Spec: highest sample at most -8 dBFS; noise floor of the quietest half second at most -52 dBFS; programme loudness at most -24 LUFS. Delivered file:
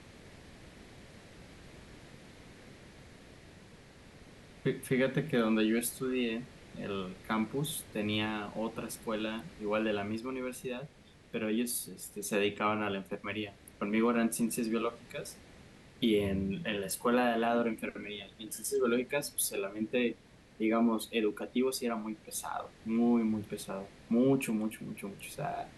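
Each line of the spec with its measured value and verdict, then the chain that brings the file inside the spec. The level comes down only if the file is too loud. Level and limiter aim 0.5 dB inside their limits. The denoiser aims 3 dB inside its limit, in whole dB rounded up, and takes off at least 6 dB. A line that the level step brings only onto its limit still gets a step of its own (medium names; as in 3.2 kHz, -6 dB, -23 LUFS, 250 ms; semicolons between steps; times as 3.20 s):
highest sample -17.0 dBFS: pass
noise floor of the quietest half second -55 dBFS: pass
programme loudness -33.5 LUFS: pass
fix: none needed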